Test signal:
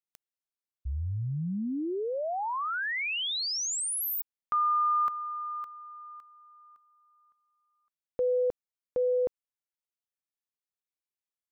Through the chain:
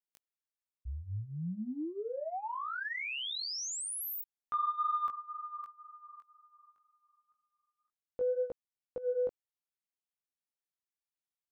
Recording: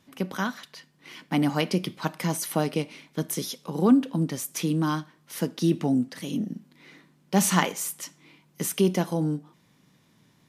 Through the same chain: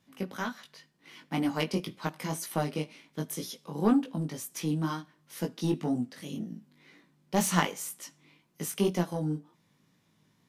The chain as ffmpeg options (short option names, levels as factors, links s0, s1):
-af "aeval=exprs='0.562*(cos(1*acos(clip(val(0)/0.562,-1,1)))-cos(1*PI/2))+0.0282*(cos(7*acos(clip(val(0)/0.562,-1,1)))-cos(7*PI/2))':c=same,flanger=delay=17:depth=3.3:speed=2"